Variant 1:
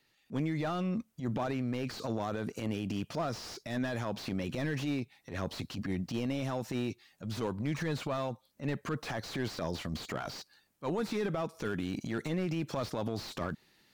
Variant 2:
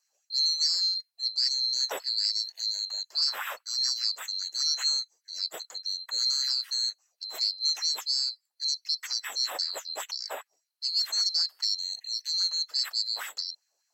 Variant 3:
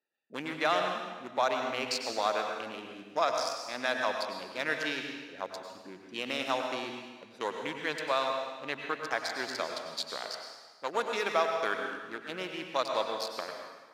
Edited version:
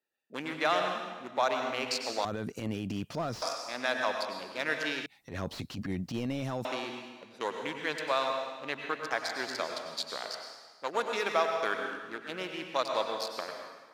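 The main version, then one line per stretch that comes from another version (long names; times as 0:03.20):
3
0:02.25–0:03.42: punch in from 1
0:05.06–0:06.65: punch in from 1
not used: 2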